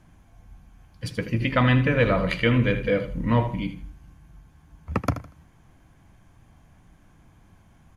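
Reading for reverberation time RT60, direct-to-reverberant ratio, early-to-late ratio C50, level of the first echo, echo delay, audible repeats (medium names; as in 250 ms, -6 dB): no reverb, no reverb, no reverb, -12.0 dB, 79 ms, 2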